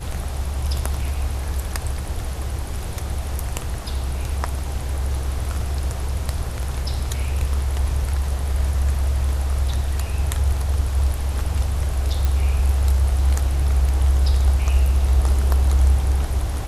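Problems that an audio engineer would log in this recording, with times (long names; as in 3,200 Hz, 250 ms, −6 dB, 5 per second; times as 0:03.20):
0:12.25: click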